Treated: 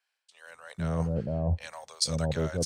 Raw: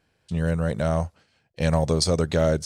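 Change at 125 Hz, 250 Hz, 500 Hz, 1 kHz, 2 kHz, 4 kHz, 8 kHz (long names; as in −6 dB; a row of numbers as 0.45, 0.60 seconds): −6.0, −7.5, −10.0, −9.5, −8.5, −3.5, −2.5 decibels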